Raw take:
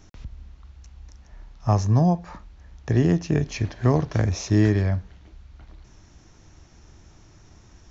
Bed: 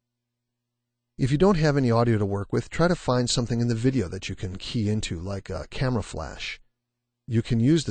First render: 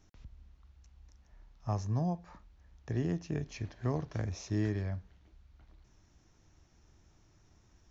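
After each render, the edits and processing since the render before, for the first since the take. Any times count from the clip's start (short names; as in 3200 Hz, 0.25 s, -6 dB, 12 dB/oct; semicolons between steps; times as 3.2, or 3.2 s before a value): gain -13.5 dB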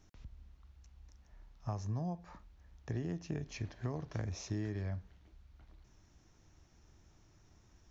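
compressor 6:1, threshold -34 dBFS, peak gain reduction 7.5 dB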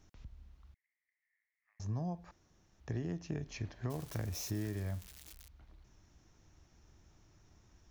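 0.74–1.8 Butterworth band-pass 2000 Hz, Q 6.2; 2.31–2.8 room tone; 3.9–5.48 switching spikes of -38 dBFS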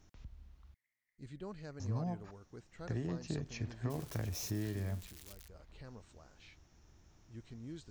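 add bed -27 dB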